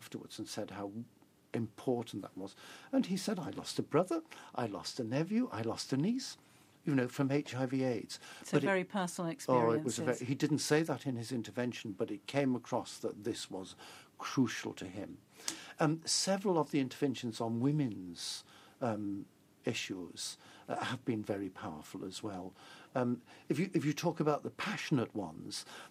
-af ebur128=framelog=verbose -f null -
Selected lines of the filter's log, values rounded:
Integrated loudness:
  I:         -36.6 LUFS
  Threshold: -46.9 LUFS
Loudness range:
  LRA:         6.2 LU
  Threshold: -56.8 LUFS
  LRA low:   -40.5 LUFS
  LRA high:  -34.3 LUFS